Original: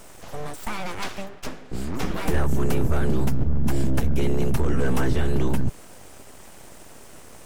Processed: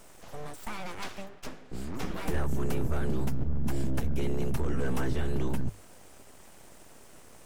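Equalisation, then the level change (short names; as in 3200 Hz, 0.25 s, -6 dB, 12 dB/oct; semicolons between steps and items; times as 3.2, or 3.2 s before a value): notches 50/100 Hz; -7.5 dB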